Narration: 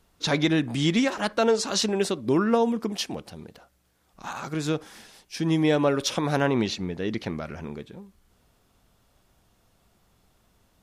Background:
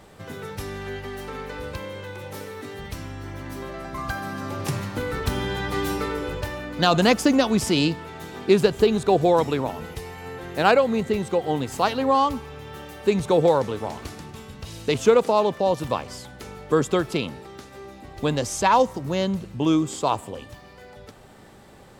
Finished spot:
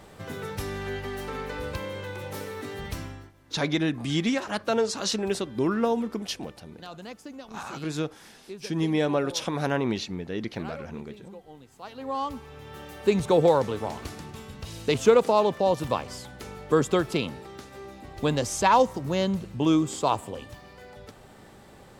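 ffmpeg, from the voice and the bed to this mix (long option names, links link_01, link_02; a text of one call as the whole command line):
ffmpeg -i stem1.wav -i stem2.wav -filter_complex "[0:a]adelay=3300,volume=-3dB[link_01];[1:a]volume=22dB,afade=type=out:start_time=2.97:duration=0.35:silence=0.0668344,afade=type=in:start_time=11.8:duration=1.3:silence=0.0794328[link_02];[link_01][link_02]amix=inputs=2:normalize=0" out.wav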